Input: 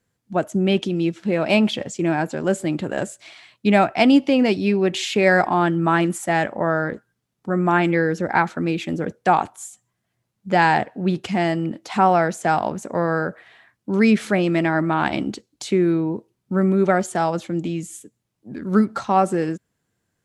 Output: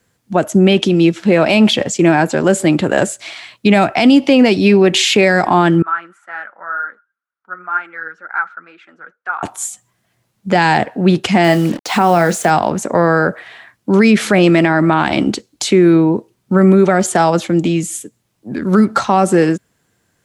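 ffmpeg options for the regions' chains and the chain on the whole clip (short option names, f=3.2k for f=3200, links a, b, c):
-filter_complex "[0:a]asettb=1/sr,asplit=3[a][b][c];[a]atrim=end=5.824[d];[b]atrim=start=5.82:end=9.43,asetpts=PTS-STARTPTS,afade=t=in:d=0.004:c=qsin,afade=t=out:st=3.606:d=0.004:c=qsin,flanger=delay=1.8:depth=4.5:regen=42:speed=2:shape=triangular,bandpass=f=1.4k:t=q:w=9.1[e];[c]atrim=start=9.426[f];[d][e]acrossfade=d=0.004:c1=hsin:c2=qsin[g];[g][f]acrossfade=d=0.004:c1=qsin:c2=hsin,asettb=1/sr,asplit=3[h][i][j];[h]atrim=end=11.444[k];[i]atrim=start=11.44:end=12.5,asetpts=PTS-STARTPTS,afade=t=in:d=0.004:c=qsin,afade=t=out:st=1.056:d=0.004:c=qsin,asplit=2[l][m];[m]adelay=29,volume=-13dB[n];[l][n]amix=inputs=2:normalize=0,atrim=end_sample=46746,acrusher=bits=6:mix=0:aa=0.5[o];[j]atrim=start=12.496[p];[k][o]acrossfade=d=0.004:c1=hsin:c2=qsin[q];[q][p]acrossfade=d=0.004:c1=qsin:c2=hsin,lowshelf=f=370:g=-4,acrossover=split=340|3000[r][s][t];[s]acompressor=threshold=-20dB:ratio=6[u];[r][u][t]amix=inputs=3:normalize=0,alimiter=level_in=14dB:limit=-1dB:release=50:level=0:latency=1,volume=-1dB"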